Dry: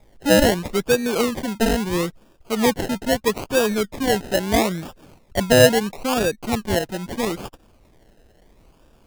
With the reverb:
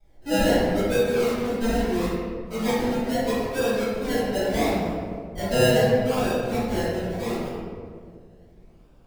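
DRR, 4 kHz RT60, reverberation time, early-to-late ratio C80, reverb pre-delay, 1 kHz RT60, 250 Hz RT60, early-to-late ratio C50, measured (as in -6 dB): -17.0 dB, 1.0 s, 2.0 s, 0.0 dB, 3 ms, 1.7 s, 2.5 s, -3.0 dB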